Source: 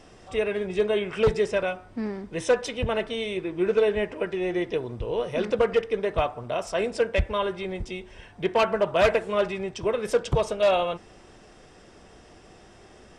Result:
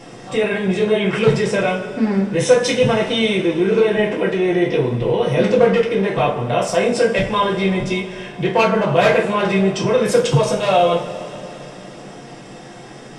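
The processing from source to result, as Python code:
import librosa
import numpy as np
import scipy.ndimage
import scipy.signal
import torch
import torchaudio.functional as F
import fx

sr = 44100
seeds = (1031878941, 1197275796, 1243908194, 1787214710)

p1 = fx.low_shelf_res(x, sr, hz=100.0, db=-11.0, q=3.0)
p2 = fx.over_compress(p1, sr, threshold_db=-29.0, ratio=-1.0)
p3 = p1 + (p2 * librosa.db_to_amplitude(-2.0))
p4 = fx.rev_double_slope(p3, sr, seeds[0], early_s=0.31, late_s=3.8, knee_db=-21, drr_db=-3.5)
y = p4 * librosa.db_to_amplitude(1.0)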